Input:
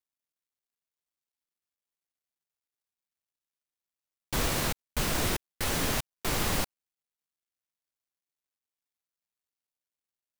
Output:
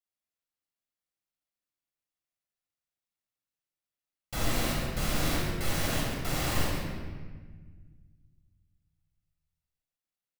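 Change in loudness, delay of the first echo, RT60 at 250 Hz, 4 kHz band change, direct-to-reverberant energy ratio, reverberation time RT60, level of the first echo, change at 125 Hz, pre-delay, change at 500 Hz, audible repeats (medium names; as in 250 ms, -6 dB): -1.5 dB, 137 ms, 2.3 s, -1.5 dB, -4.0 dB, 1.5 s, -8.0 dB, +2.5 dB, 19 ms, -0.5 dB, 1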